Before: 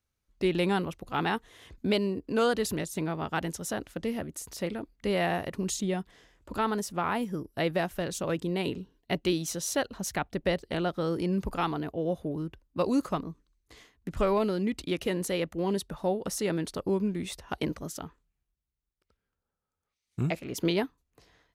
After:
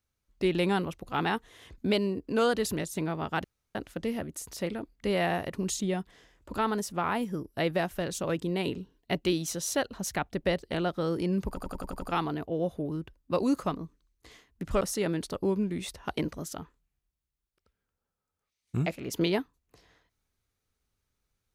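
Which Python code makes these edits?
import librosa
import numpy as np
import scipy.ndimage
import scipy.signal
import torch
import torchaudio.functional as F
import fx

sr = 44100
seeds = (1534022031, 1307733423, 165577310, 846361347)

y = fx.edit(x, sr, fx.room_tone_fill(start_s=3.44, length_s=0.31),
    fx.stutter(start_s=11.48, slice_s=0.09, count=7),
    fx.cut(start_s=14.27, length_s=1.98), tone=tone)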